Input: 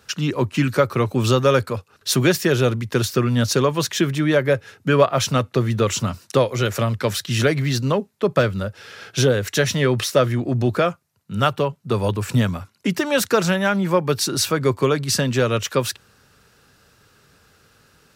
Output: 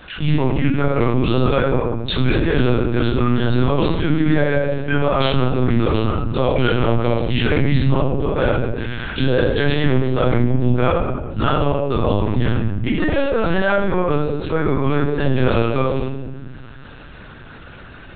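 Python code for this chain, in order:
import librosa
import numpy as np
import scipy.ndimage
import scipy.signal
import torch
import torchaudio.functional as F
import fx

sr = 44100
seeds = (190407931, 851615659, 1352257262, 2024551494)

y = fx.high_shelf(x, sr, hz=3000.0, db=-7.0, at=(12.92, 15.3))
y = fx.level_steps(y, sr, step_db=23)
y = fx.room_shoebox(y, sr, seeds[0], volume_m3=230.0, walls='mixed', distance_m=3.8)
y = fx.lpc_vocoder(y, sr, seeds[1], excitation='pitch_kept', order=10)
y = fx.env_flatten(y, sr, amount_pct=50)
y = F.gain(torch.from_numpy(y), -8.0).numpy()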